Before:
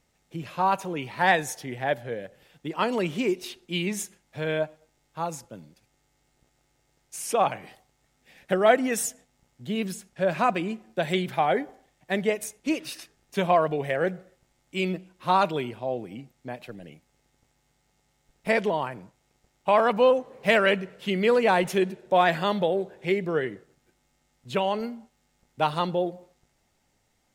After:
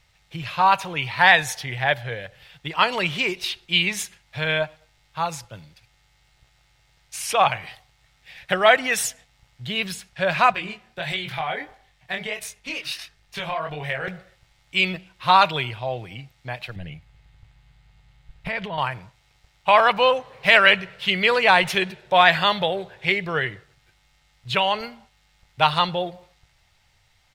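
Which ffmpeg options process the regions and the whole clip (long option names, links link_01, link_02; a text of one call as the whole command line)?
ffmpeg -i in.wav -filter_complex "[0:a]asettb=1/sr,asplit=3[link_01][link_02][link_03];[link_01]atrim=end=10.524[link_04];[link_02]atrim=start=10.52:end=14.08,asetpts=PTS-STARTPTS,afade=type=in:duration=0.004:curve=qsin,afade=type=out:start_time=3.556:duration=0.004:curve=qsin,acompressor=threshold=-25dB:ratio=4:attack=3.2:release=140:knee=1:detection=peak,flanger=delay=19.5:depth=6.6:speed=1.5[link_05];[link_03]atrim=start=14.076[link_06];[link_04][link_05]acrossfade=duration=0.004:curve1=hsin:curve2=qsin[link_07];[link_07][link_06]acrossfade=duration=0.004:curve1=qsin:curve2=hsin,asettb=1/sr,asplit=3[link_08][link_09][link_10];[link_08]atrim=end=16.764[link_11];[link_09]atrim=start=16.76:end=18.78,asetpts=PTS-STARTPTS,afade=type=in:duration=0.004:curve=qsin,afade=type=out:start_time=2.016:duration=0.004:curve=qsin,bass=frequency=250:gain=10,treble=frequency=4000:gain=-7,bandreject=frequency=5600:width=17,acompressor=threshold=-27dB:ratio=12:attack=3.2:release=140:knee=1:detection=peak[link_12];[link_10]atrim=start=18.776[link_13];[link_11][link_12]acrossfade=duration=0.004:curve1=hsin:curve2=qsin[link_14];[link_14][link_13]acrossfade=duration=0.004:curve1=qsin:curve2=hsin,firequalizer=gain_entry='entry(110,0);entry(230,-19);entry(660,-8);entry(950,-4);entry(2300,1);entry(4000,2);entry(6800,-8)':delay=0.05:min_phase=1,alimiter=level_in=12dB:limit=-1dB:release=50:level=0:latency=1,volume=-1dB" out.wav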